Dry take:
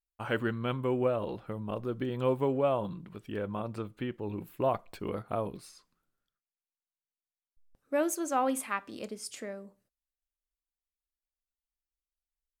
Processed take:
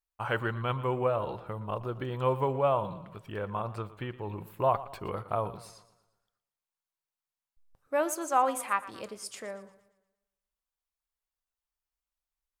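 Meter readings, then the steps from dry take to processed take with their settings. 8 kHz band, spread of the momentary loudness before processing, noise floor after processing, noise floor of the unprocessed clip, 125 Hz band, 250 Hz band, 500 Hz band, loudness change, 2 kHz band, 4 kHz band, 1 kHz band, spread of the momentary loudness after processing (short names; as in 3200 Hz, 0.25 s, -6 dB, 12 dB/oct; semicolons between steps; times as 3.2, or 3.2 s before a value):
0.0 dB, 11 LU, under -85 dBFS, under -85 dBFS, +2.5 dB, -5.0 dB, +0.5 dB, +1.5 dB, +2.5 dB, +0.5 dB, +5.0 dB, 13 LU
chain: graphic EQ 125/250/1000 Hz +4/-8/+7 dB; warbling echo 0.117 s, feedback 45%, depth 61 cents, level -16.5 dB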